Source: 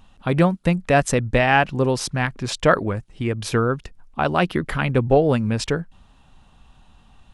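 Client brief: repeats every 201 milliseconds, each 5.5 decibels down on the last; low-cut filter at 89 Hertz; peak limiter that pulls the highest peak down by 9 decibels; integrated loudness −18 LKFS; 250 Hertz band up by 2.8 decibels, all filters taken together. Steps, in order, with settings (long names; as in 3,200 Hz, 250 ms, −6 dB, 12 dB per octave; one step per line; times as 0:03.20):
high-pass filter 89 Hz
parametric band 250 Hz +4 dB
brickwall limiter −10.5 dBFS
repeating echo 201 ms, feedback 53%, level −5.5 dB
level +3.5 dB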